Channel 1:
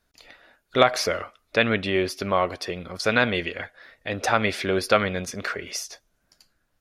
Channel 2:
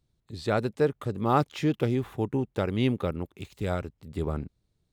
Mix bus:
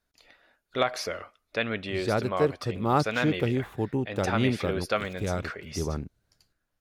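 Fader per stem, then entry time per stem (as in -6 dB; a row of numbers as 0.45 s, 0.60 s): -8.0 dB, -0.5 dB; 0.00 s, 1.60 s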